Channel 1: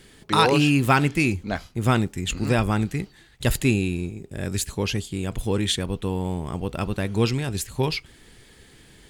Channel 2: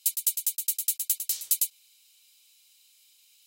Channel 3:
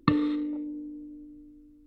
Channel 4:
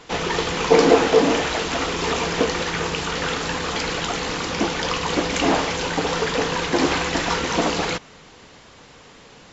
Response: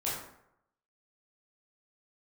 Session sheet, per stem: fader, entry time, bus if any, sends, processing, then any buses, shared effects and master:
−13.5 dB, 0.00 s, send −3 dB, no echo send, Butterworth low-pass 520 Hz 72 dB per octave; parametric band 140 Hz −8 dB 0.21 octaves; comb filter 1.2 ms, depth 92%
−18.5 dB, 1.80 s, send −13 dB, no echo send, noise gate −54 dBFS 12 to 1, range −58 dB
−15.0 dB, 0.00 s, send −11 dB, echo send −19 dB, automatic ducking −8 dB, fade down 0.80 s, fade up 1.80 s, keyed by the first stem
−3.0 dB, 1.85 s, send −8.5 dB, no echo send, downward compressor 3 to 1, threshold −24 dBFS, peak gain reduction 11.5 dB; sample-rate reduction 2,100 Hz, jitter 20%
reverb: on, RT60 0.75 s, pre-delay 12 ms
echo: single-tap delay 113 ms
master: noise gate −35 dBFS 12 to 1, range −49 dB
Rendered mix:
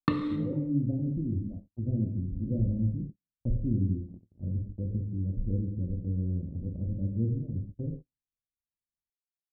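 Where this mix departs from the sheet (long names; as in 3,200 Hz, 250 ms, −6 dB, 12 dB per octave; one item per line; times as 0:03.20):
stem 2: muted
stem 3 −15.0 dB → −4.0 dB
stem 4: muted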